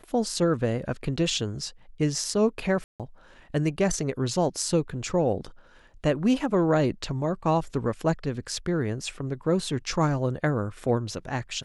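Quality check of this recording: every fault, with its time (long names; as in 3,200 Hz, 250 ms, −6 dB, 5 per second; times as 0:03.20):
0:02.84–0:03.00: drop-out 157 ms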